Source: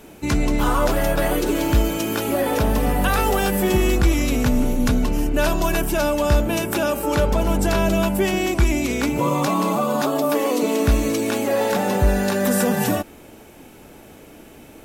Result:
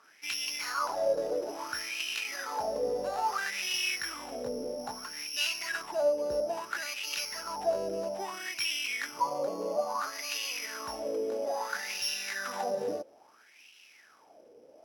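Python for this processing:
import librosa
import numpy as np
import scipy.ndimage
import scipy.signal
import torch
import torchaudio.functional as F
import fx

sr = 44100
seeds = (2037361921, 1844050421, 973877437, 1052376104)

y = (np.kron(x[::8], np.eye(8)[0]) * 8)[:len(x)]
y = fx.wah_lfo(y, sr, hz=0.6, low_hz=480.0, high_hz=2800.0, q=8.0)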